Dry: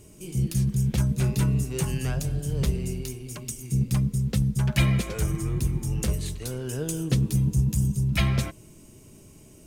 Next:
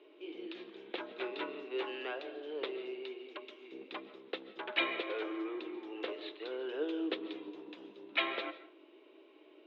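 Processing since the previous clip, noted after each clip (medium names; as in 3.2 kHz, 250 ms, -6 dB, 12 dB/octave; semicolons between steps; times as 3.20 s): Chebyshev band-pass 310–3800 Hz, order 5; on a send at -14.5 dB: reverberation RT60 0.45 s, pre-delay 100 ms; on the sum: trim -2 dB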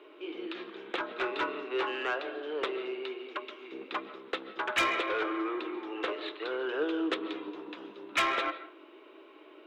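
peaking EQ 1.3 kHz +10 dB 1 oct; saturation -26 dBFS, distortion -13 dB; trim +5 dB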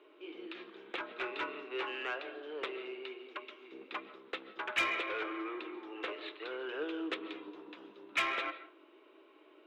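dynamic bell 2.4 kHz, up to +6 dB, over -49 dBFS, Q 1.8; trim -7.5 dB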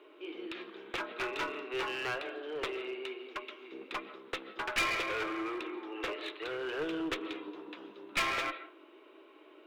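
one-sided clip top -38 dBFS; trim +4 dB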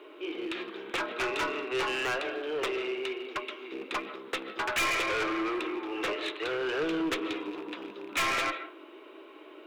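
rattle on loud lows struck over -54 dBFS, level -44 dBFS; saturation -32 dBFS, distortion -13 dB; trim +7.5 dB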